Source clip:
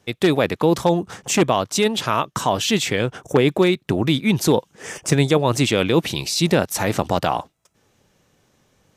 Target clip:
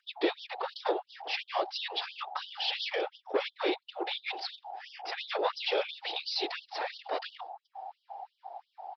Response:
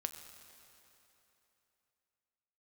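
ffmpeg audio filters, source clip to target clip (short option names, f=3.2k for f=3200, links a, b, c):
-af "adynamicequalizer=threshold=0.02:dfrequency=1700:dqfactor=0.73:tfrequency=1700:tqfactor=0.73:attack=5:release=100:ratio=0.375:range=1.5:mode=cutabove:tftype=bell,aresample=11025,asoftclip=type=tanh:threshold=-12.5dB,aresample=44100,aeval=exprs='val(0)+0.0224*sin(2*PI*780*n/s)':c=same,afftfilt=real='hypot(re,im)*cos(2*PI*random(0))':imag='hypot(re,im)*sin(2*PI*random(1))':win_size=512:overlap=0.75,afftfilt=real='re*gte(b*sr/1024,300*pow(3000/300,0.5+0.5*sin(2*PI*2.9*pts/sr)))':imag='im*gte(b*sr/1024,300*pow(3000/300,0.5+0.5*sin(2*PI*2.9*pts/sr)))':win_size=1024:overlap=0.75"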